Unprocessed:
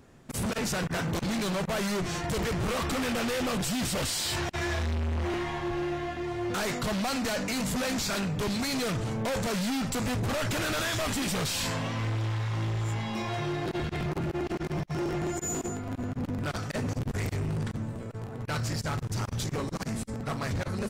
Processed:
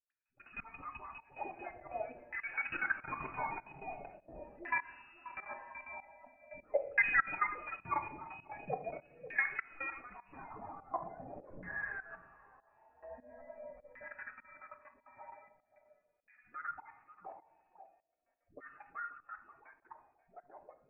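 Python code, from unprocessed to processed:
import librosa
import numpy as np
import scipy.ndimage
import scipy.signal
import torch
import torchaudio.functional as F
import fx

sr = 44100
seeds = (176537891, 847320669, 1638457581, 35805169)

y = fx.bin_expand(x, sr, power=2.0)
y = fx.highpass(y, sr, hz=fx.steps((0.0, 130.0), (8.99, 310.0), (10.22, 790.0)), slope=12)
y = fx.freq_invert(y, sr, carrier_hz=2700)
y = fx.dispersion(y, sr, late='highs', ms=109.0, hz=450.0)
y = fx.level_steps(y, sr, step_db=18)
y = y + 10.0 ** (-15.5 / 20.0) * np.pad(y, (int(535 * sr / 1000.0), 0))[:len(y)]
y = fx.room_shoebox(y, sr, seeds[0], volume_m3=150.0, walls='mixed', distance_m=0.42)
y = fx.filter_lfo_lowpass(y, sr, shape='saw_down', hz=0.43, low_hz=520.0, high_hz=1800.0, q=5.9)
y = fx.volume_shaper(y, sr, bpm=100, per_beat=1, depth_db=-17, release_ms=238.0, shape='fast start')
y = y * librosa.db_to_amplitude(1.5)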